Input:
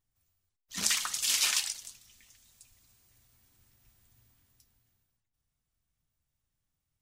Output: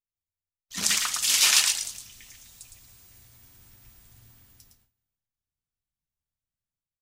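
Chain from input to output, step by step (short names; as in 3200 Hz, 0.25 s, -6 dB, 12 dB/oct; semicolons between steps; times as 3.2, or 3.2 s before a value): gate with hold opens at -59 dBFS; AGC gain up to 10 dB; on a send: echo 0.111 s -5.5 dB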